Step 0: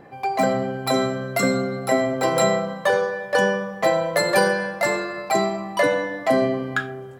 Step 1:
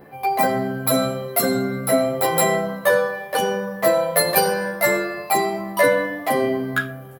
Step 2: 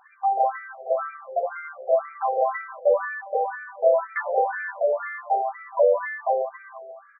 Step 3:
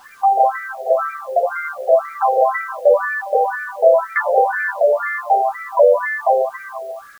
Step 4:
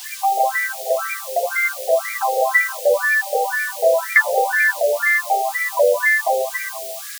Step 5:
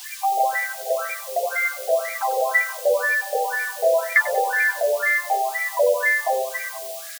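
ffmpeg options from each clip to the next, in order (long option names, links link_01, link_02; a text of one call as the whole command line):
ffmpeg -i in.wav -filter_complex "[0:a]aexciter=amount=7:drive=5.5:freq=10000,asplit=2[link_01][link_02];[link_02]adelay=11.5,afreqshift=1[link_03];[link_01][link_03]amix=inputs=2:normalize=1,volume=4dB" out.wav
ffmpeg -i in.wav -af "afftfilt=real='re*between(b*sr/1024,550*pow(1700/550,0.5+0.5*sin(2*PI*2*pts/sr))/1.41,550*pow(1700/550,0.5+0.5*sin(2*PI*2*pts/sr))*1.41)':imag='im*between(b*sr/1024,550*pow(1700/550,0.5+0.5*sin(2*PI*2*pts/sr))/1.41,550*pow(1700/550,0.5+0.5*sin(2*PI*2*pts/sr))*1.41)':win_size=1024:overlap=0.75" out.wav
ffmpeg -i in.wav -filter_complex "[0:a]asplit=2[link_01][link_02];[link_02]acompressor=threshold=-28dB:ratio=10,volume=1dB[link_03];[link_01][link_03]amix=inputs=2:normalize=0,acrusher=bits=8:mix=0:aa=0.000001,volume=5dB" out.wav
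ffmpeg -i in.wav -af "aexciter=amount=15:drive=2.7:freq=2000,volume=-4dB" out.wav
ffmpeg -i in.wav -filter_complex "[0:a]asplit=2[link_01][link_02];[link_02]adelay=94,lowpass=frequency=1300:poles=1,volume=-11.5dB,asplit=2[link_03][link_04];[link_04]adelay=94,lowpass=frequency=1300:poles=1,volume=0.37,asplit=2[link_05][link_06];[link_06]adelay=94,lowpass=frequency=1300:poles=1,volume=0.37,asplit=2[link_07][link_08];[link_08]adelay=94,lowpass=frequency=1300:poles=1,volume=0.37[link_09];[link_01][link_03][link_05][link_07][link_09]amix=inputs=5:normalize=0,volume=-3.5dB" out.wav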